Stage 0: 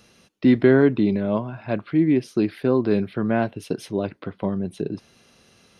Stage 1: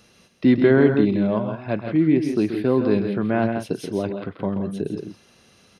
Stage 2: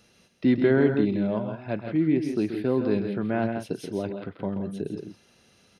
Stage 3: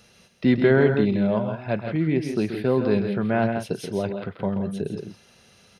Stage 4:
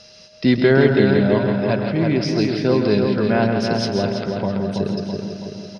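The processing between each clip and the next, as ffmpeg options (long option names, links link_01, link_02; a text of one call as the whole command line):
ffmpeg -i in.wav -af "aecho=1:1:131.2|166.2:0.355|0.355" out.wav
ffmpeg -i in.wav -af "bandreject=frequency=1100:width=10,volume=-5dB" out.wav
ffmpeg -i in.wav -af "equalizer=frequency=300:width_type=o:width=0.42:gain=-9.5,volume=5.5dB" out.wav
ffmpeg -i in.wav -filter_complex "[0:a]lowpass=frequency=5100:width_type=q:width=6.6,aeval=exprs='val(0)+0.00224*sin(2*PI*620*n/s)':channel_layout=same,asplit=2[link_01][link_02];[link_02]adelay=329,lowpass=frequency=3100:poles=1,volume=-4dB,asplit=2[link_03][link_04];[link_04]adelay=329,lowpass=frequency=3100:poles=1,volume=0.54,asplit=2[link_05][link_06];[link_06]adelay=329,lowpass=frequency=3100:poles=1,volume=0.54,asplit=2[link_07][link_08];[link_08]adelay=329,lowpass=frequency=3100:poles=1,volume=0.54,asplit=2[link_09][link_10];[link_10]adelay=329,lowpass=frequency=3100:poles=1,volume=0.54,asplit=2[link_11][link_12];[link_12]adelay=329,lowpass=frequency=3100:poles=1,volume=0.54,asplit=2[link_13][link_14];[link_14]adelay=329,lowpass=frequency=3100:poles=1,volume=0.54[link_15];[link_01][link_03][link_05][link_07][link_09][link_11][link_13][link_15]amix=inputs=8:normalize=0,volume=3dB" out.wav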